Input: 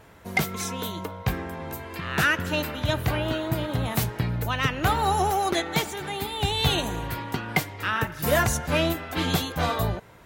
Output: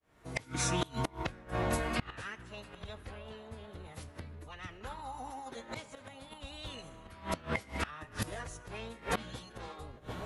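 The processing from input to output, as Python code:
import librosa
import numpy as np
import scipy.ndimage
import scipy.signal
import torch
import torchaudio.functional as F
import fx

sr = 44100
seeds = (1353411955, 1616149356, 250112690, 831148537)

y = fx.fade_in_head(x, sr, length_s=1.03)
y = fx.echo_tape(y, sr, ms=743, feedback_pct=70, wet_db=-17.0, lp_hz=1200.0, drive_db=9.0, wow_cents=34)
y = fx.pitch_keep_formants(y, sr, semitones=-6.5)
y = fx.rev_fdn(y, sr, rt60_s=1.2, lf_ratio=0.9, hf_ratio=0.9, size_ms=37.0, drr_db=16.0)
y = fx.gate_flip(y, sr, shuts_db=-23.0, range_db=-24)
y = y * 10.0 ** (4.0 / 20.0)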